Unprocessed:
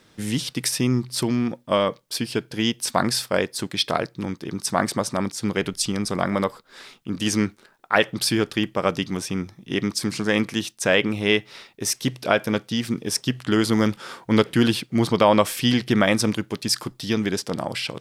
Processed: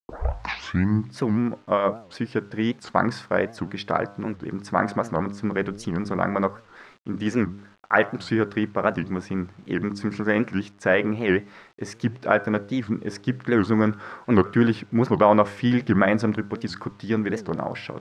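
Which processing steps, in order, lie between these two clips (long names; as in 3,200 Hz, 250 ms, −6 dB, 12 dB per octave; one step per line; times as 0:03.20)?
turntable start at the beginning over 1.09 s
high shelf with overshoot 2,300 Hz −9 dB, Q 1.5
hum removal 100.7 Hz, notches 15
bit reduction 9 bits
high-frequency loss of the air 110 metres
wow of a warped record 78 rpm, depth 250 cents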